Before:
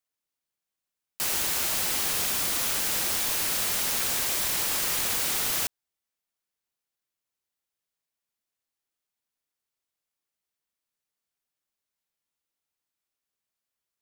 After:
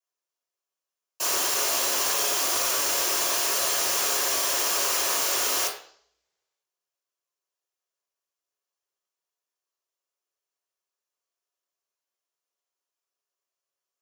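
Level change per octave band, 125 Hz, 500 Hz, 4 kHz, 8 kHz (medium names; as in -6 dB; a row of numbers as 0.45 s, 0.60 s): under -10 dB, +7.5 dB, +3.5 dB, +3.5 dB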